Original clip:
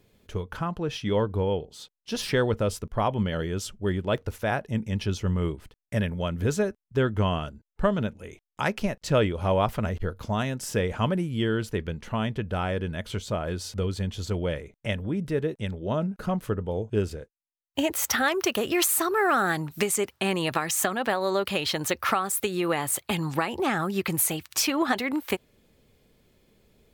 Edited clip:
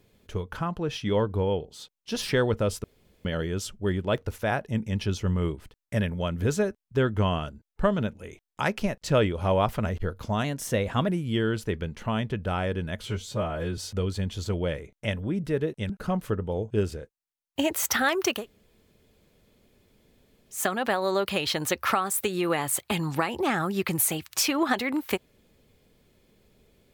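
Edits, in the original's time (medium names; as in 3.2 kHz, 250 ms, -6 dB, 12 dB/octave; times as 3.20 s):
2.84–3.25 s: room tone
10.44–11.14 s: speed 109%
13.10–13.59 s: stretch 1.5×
15.71–16.09 s: delete
18.58–20.78 s: room tone, crossfade 0.16 s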